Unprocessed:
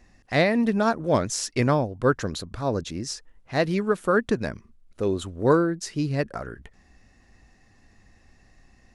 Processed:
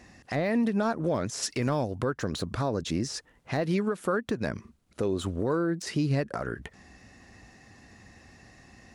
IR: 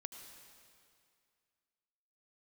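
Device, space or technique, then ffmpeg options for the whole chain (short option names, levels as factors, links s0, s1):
podcast mastering chain: -filter_complex "[0:a]asplit=3[s0][s1][s2];[s0]afade=t=out:st=1.42:d=0.02[s3];[s1]highshelf=f=2200:g=11,afade=t=in:st=1.42:d=0.02,afade=t=out:st=1.94:d=0.02[s4];[s2]afade=t=in:st=1.94:d=0.02[s5];[s3][s4][s5]amix=inputs=3:normalize=0,highpass=82,deesser=0.9,acompressor=threshold=0.0398:ratio=4,alimiter=level_in=1.19:limit=0.0631:level=0:latency=1:release=184,volume=0.841,volume=2.37" -ar 48000 -c:a libmp3lame -b:a 96k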